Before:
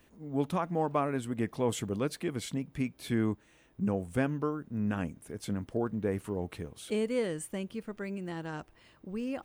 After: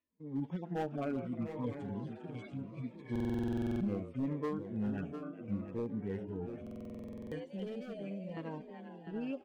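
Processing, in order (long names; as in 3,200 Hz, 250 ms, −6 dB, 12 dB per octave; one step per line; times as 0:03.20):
harmonic-percussive split with one part muted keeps harmonic
noise gate −52 dBFS, range −23 dB
low-pass filter 2,500 Hz 12 dB per octave
spectral tilt +2 dB per octave
echo with shifted repeats 395 ms, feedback 57%, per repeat +68 Hz, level −12 dB
gain into a clipping stage and back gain 30.5 dB
0:07.44–0:08.37: phaser with its sweep stopped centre 330 Hz, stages 6
single-tap delay 701 ms −9 dB
buffer that repeats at 0:03.11/0:06.62, samples 2,048, times 14
phaser whose notches keep moving one way falling 0.72 Hz
level +1 dB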